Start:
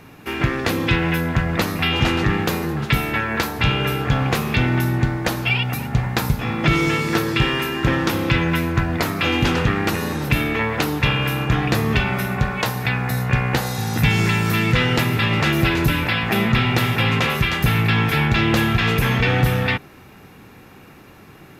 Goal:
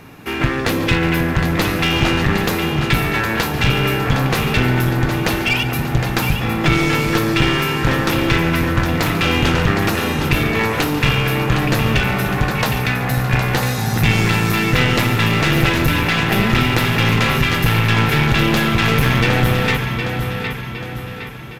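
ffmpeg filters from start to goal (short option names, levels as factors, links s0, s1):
-filter_complex "[0:a]asplit=2[s0][s1];[s1]aecho=0:1:762|1524|2286|3048|3810:0.398|0.183|0.0842|0.0388|0.0178[s2];[s0][s2]amix=inputs=2:normalize=0,aeval=exprs='clip(val(0),-1,0.112)':c=same,asplit=2[s3][s4];[s4]aecho=0:1:142:0.178[s5];[s3][s5]amix=inputs=2:normalize=0,volume=1.5"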